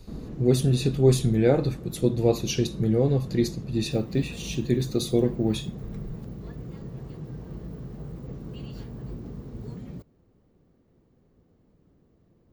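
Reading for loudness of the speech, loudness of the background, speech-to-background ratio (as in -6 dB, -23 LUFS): -24.5 LUFS, -39.0 LUFS, 14.5 dB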